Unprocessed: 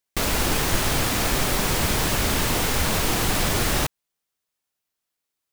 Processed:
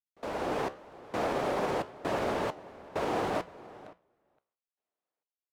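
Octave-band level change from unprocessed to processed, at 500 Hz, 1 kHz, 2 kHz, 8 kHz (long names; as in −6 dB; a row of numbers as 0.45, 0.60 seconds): −3.5, −6.0, −14.0, −27.5 decibels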